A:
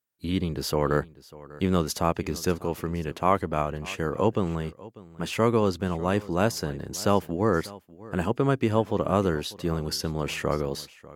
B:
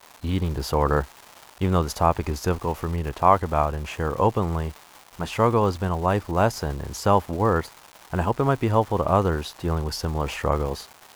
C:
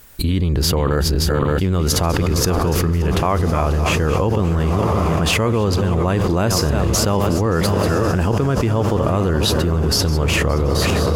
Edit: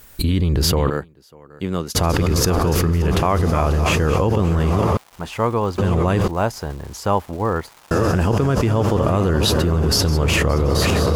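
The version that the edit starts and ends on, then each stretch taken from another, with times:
C
0.90–1.95 s: from A
4.97–5.78 s: from B
6.28–7.91 s: from B

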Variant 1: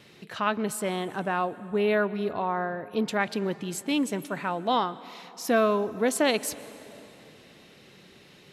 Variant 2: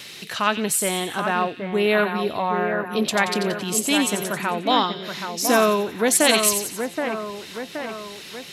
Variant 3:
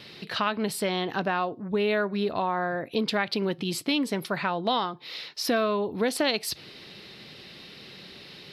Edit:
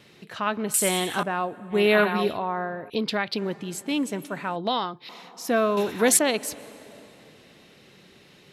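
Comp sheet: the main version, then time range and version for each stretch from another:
1
0.74–1.23 s: from 2
1.74–2.35 s: from 2, crossfade 0.10 s
2.90–3.38 s: from 3
4.56–5.09 s: from 3
5.77–6.19 s: from 2

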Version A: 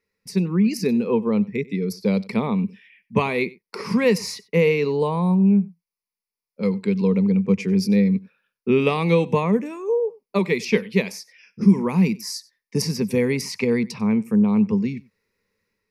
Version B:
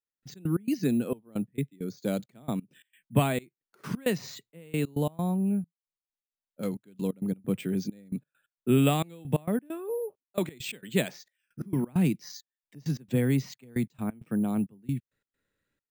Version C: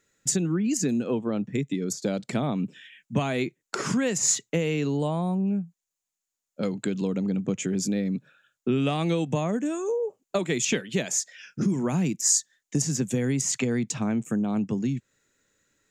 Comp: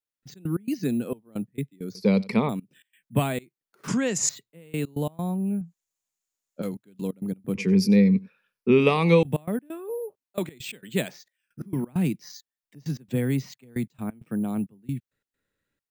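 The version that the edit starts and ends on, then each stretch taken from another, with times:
B
1.95–2.49 s: from A
3.88–4.29 s: from C
5.61–6.62 s: from C
7.55–9.23 s: from A

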